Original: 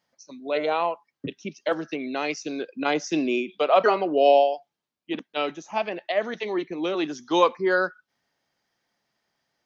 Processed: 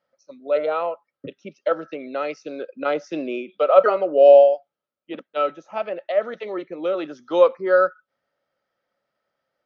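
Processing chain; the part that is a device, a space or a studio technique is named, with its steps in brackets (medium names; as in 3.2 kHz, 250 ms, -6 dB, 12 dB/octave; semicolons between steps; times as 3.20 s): inside a cardboard box (low-pass 4 kHz 12 dB/octave; small resonant body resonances 550/1300 Hz, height 15 dB, ringing for 30 ms); trim -5.5 dB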